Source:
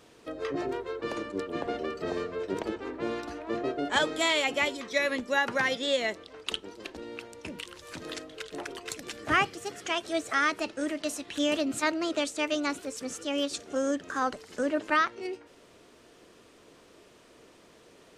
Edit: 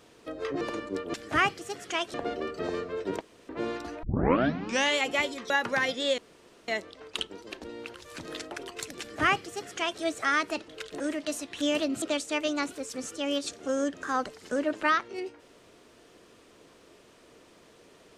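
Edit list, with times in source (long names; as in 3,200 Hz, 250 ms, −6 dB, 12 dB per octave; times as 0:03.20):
0:00.61–0:01.04: remove
0:02.64–0:02.92: fill with room tone
0:03.46: tape start 0.94 s
0:04.93–0:05.33: remove
0:06.01: splice in room tone 0.50 s
0:07.27–0:07.71: remove
0:08.28–0:08.60: move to 0:10.77
0:09.10–0:10.10: duplicate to 0:01.57
0:11.79–0:12.09: remove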